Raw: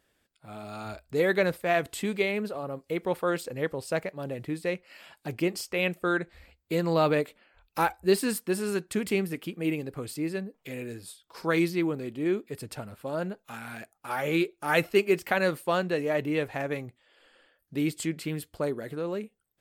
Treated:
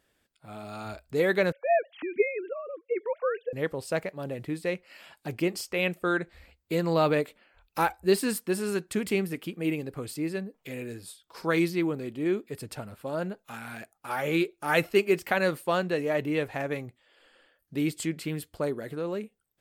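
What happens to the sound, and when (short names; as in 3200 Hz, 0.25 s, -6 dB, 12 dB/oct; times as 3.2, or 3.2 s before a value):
1.52–3.53 sine-wave speech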